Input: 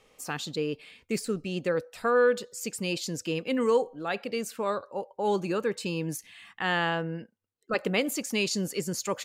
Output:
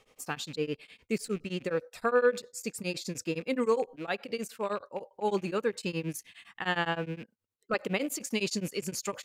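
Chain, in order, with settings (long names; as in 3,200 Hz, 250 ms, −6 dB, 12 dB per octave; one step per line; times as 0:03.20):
loose part that buzzes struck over −45 dBFS, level −37 dBFS
0:01.66–0:03.89: notch filter 3,000 Hz, Q 7.9
tremolo along a rectified sine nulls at 9.7 Hz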